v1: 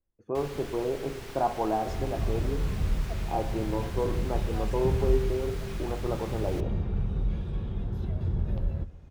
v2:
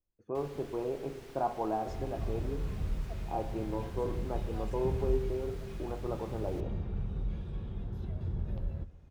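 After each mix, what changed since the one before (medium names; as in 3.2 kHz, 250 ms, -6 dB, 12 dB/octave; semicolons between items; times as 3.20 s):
speech -5.0 dB; first sound -10.5 dB; second sound -6.5 dB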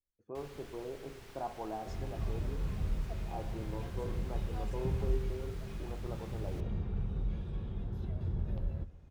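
speech -7.5 dB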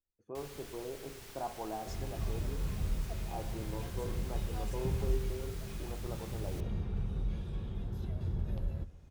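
master: add treble shelf 4.7 kHz +11.5 dB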